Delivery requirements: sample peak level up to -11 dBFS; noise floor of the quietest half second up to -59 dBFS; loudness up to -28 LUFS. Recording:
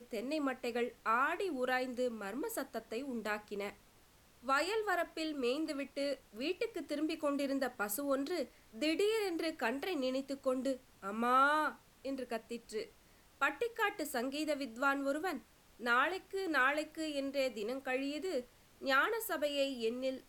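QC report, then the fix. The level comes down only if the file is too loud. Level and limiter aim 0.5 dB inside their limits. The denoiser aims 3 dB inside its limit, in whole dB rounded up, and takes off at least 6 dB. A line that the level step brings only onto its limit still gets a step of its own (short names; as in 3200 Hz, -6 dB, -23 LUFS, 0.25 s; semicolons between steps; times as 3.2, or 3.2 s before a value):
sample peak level -18.5 dBFS: OK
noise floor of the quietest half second -65 dBFS: OK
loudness -36.5 LUFS: OK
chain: none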